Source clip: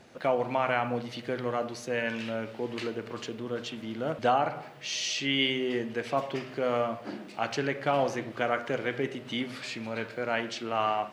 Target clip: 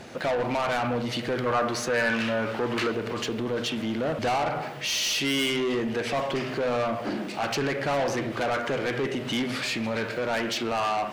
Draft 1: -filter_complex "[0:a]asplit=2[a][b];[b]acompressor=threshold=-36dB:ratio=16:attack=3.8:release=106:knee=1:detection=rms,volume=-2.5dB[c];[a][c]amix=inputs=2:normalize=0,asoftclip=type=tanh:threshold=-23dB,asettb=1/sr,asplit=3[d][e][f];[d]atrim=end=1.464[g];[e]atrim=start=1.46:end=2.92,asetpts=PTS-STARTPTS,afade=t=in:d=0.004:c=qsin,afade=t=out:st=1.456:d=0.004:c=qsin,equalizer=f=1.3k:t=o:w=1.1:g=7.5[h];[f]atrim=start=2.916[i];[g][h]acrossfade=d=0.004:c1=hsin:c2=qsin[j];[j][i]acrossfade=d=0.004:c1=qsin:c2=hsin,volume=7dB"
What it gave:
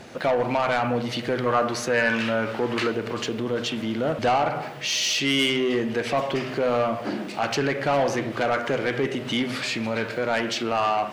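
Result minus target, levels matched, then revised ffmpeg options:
soft clip: distortion -5 dB
-filter_complex "[0:a]asplit=2[a][b];[b]acompressor=threshold=-36dB:ratio=16:attack=3.8:release=106:knee=1:detection=rms,volume=-2.5dB[c];[a][c]amix=inputs=2:normalize=0,asoftclip=type=tanh:threshold=-29.5dB,asettb=1/sr,asplit=3[d][e][f];[d]atrim=end=1.464[g];[e]atrim=start=1.46:end=2.92,asetpts=PTS-STARTPTS,afade=t=in:d=0.004:c=qsin,afade=t=out:st=1.456:d=0.004:c=qsin,equalizer=f=1.3k:t=o:w=1.1:g=7.5[h];[f]atrim=start=2.916[i];[g][h]acrossfade=d=0.004:c1=hsin:c2=qsin[j];[j][i]acrossfade=d=0.004:c1=qsin:c2=hsin,volume=7dB"

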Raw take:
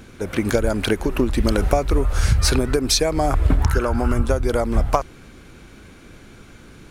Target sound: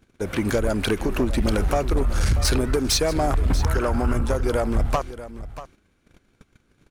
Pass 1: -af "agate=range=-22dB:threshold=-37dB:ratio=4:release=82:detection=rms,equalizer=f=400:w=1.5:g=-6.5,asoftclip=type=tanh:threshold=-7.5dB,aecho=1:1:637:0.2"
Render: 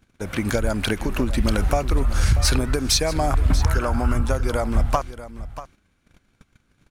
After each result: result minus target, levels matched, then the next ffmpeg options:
soft clip: distortion -10 dB; 500 Hz band -3.0 dB
-af "agate=range=-22dB:threshold=-37dB:ratio=4:release=82:detection=rms,equalizer=f=400:w=1.5:g=-6.5,asoftclip=type=tanh:threshold=-14.5dB,aecho=1:1:637:0.2"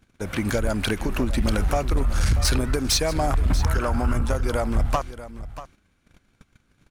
500 Hz band -2.5 dB
-af "agate=range=-22dB:threshold=-37dB:ratio=4:release=82:detection=rms,asoftclip=type=tanh:threshold=-14.5dB,aecho=1:1:637:0.2"

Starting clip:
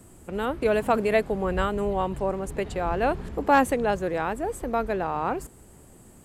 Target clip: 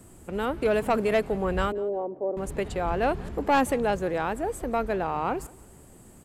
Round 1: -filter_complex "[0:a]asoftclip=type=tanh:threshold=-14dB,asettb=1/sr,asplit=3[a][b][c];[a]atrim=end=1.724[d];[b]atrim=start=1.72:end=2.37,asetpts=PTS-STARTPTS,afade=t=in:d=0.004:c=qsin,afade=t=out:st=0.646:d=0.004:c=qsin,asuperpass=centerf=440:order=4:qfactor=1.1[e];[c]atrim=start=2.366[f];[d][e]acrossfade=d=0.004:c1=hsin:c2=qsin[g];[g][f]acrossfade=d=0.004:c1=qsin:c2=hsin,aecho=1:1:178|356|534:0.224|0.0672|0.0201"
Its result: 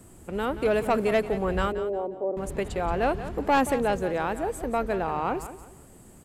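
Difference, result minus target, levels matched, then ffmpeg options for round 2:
echo-to-direct +11 dB
-filter_complex "[0:a]asoftclip=type=tanh:threshold=-14dB,asettb=1/sr,asplit=3[a][b][c];[a]atrim=end=1.724[d];[b]atrim=start=1.72:end=2.37,asetpts=PTS-STARTPTS,afade=t=in:d=0.004:c=qsin,afade=t=out:st=0.646:d=0.004:c=qsin,asuperpass=centerf=440:order=4:qfactor=1.1[e];[c]atrim=start=2.366[f];[d][e]acrossfade=d=0.004:c1=hsin:c2=qsin[g];[g][f]acrossfade=d=0.004:c1=qsin:c2=hsin,aecho=1:1:178|356:0.0631|0.0189"

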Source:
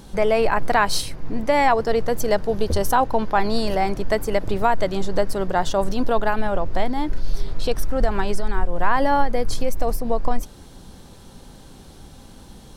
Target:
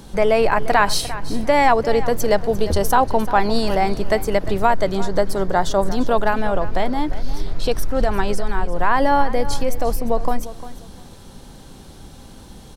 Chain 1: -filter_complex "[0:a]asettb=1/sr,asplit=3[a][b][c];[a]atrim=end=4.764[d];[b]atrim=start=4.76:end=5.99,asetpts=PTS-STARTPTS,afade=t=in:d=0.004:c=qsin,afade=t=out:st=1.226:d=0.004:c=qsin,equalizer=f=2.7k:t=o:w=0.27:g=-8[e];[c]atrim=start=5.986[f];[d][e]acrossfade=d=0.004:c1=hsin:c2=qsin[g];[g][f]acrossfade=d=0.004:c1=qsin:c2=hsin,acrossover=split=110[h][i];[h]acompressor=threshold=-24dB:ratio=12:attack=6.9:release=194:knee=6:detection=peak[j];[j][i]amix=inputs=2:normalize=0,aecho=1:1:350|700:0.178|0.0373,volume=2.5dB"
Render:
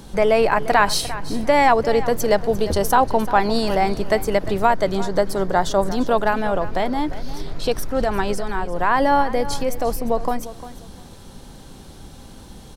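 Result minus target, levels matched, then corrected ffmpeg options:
compressor: peak gain reduction +9 dB
-filter_complex "[0:a]asettb=1/sr,asplit=3[a][b][c];[a]atrim=end=4.764[d];[b]atrim=start=4.76:end=5.99,asetpts=PTS-STARTPTS,afade=t=in:d=0.004:c=qsin,afade=t=out:st=1.226:d=0.004:c=qsin,equalizer=f=2.7k:t=o:w=0.27:g=-8[e];[c]atrim=start=5.986[f];[d][e]acrossfade=d=0.004:c1=hsin:c2=qsin[g];[g][f]acrossfade=d=0.004:c1=qsin:c2=hsin,acrossover=split=110[h][i];[h]acompressor=threshold=-14dB:ratio=12:attack=6.9:release=194:knee=6:detection=peak[j];[j][i]amix=inputs=2:normalize=0,aecho=1:1:350|700:0.178|0.0373,volume=2.5dB"

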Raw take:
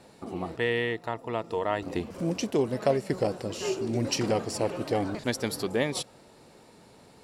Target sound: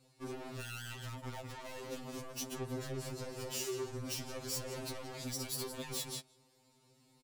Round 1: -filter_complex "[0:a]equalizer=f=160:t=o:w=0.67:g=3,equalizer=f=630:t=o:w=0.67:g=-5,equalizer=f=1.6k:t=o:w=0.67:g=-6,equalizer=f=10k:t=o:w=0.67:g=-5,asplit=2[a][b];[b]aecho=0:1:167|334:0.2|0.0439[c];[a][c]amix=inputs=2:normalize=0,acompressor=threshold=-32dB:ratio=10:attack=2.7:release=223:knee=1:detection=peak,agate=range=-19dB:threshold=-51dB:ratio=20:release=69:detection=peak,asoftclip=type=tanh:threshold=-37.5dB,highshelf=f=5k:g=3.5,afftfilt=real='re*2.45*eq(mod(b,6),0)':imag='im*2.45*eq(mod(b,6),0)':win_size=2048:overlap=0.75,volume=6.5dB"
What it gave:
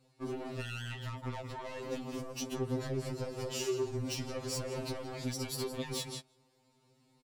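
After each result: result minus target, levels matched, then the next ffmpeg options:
8000 Hz band -4.0 dB; soft clip: distortion -5 dB
-filter_complex "[0:a]equalizer=f=160:t=o:w=0.67:g=3,equalizer=f=630:t=o:w=0.67:g=-5,equalizer=f=1.6k:t=o:w=0.67:g=-6,equalizer=f=10k:t=o:w=0.67:g=-5,asplit=2[a][b];[b]aecho=0:1:167|334:0.2|0.0439[c];[a][c]amix=inputs=2:normalize=0,acompressor=threshold=-32dB:ratio=10:attack=2.7:release=223:knee=1:detection=peak,agate=range=-19dB:threshold=-51dB:ratio=20:release=69:detection=peak,asoftclip=type=tanh:threshold=-37.5dB,highshelf=f=5k:g=11.5,afftfilt=real='re*2.45*eq(mod(b,6),0)':imag='im*2.45*eq(mod(b,6),0)':win_size=2048:overlap=0.75,volume=6.5dB"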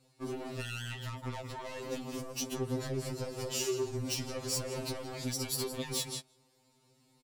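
soft clip: distortion -5 dB
-filter_complex "[0:a]equalizer=f=160:t=o:w=0.67:g=3,equalizer=f=630:t=o:w=0.67:g=-5,equalizer=f=1.6k:t=o:w=0.67:g=-6,equalizer=f=10k:t=o:w=0.67:g=-5,asplit=2[a][b];[b]aecho=0:1:167|334:0.2|0.0439[c];[a][c]amix=inputs=2:normalize=0,acompressor=threshold=-32dB:ratio=10:attack=2.7:release=223:knee=1:detection=peak,agate=range=-19dB:threshold=-51dB:ratio=20:release=69:detection=peak,asoftclip=type=tanh:threshold=-45.5dB,highshelf=f=5k:g=11.5,afftfilt=real='re*2.45*eq(mod(b,6),0)':imag='im*2.45*eq(mod(b,6),0)':win_size=2048:overlap=0.75,volume=6.5dB"

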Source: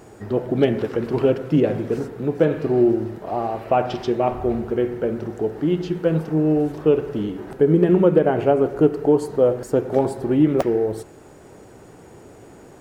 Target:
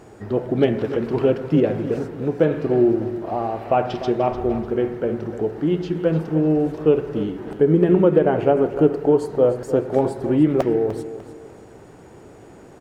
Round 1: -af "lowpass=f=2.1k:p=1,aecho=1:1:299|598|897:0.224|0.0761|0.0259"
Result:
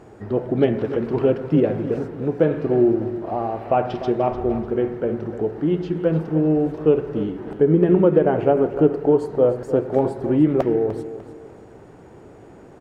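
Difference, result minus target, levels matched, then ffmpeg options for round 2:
8000 Hz band -7.0 dB
-af "lowpass=f=6.1k:p=1,aecho=1:1:299|598|897:0.224|0.0761|0.0259"

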